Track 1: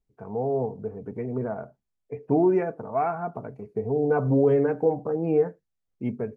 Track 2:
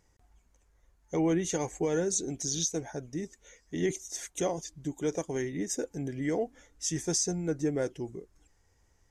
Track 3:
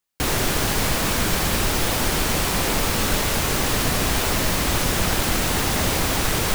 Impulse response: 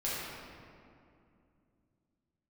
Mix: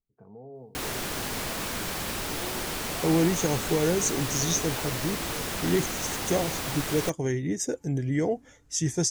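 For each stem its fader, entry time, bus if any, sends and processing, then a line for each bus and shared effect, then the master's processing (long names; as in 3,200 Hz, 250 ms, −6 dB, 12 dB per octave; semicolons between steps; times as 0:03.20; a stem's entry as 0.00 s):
−14.5 dB, 0.00 s, no send, low-shelf EQ 400 Hz +11.5 dB; downward compressor 2 to 1, threshold −34 dBFS, peak gain reduction 13.5 dB
+3.0 dB, 1.90 s, no send, parametric band 110 Hz +15 dB 1.1 octaves
−9.5 dB, 0.55 s, no send, no processing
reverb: not used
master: low-shelf EQ 110 Hz −8.5 dB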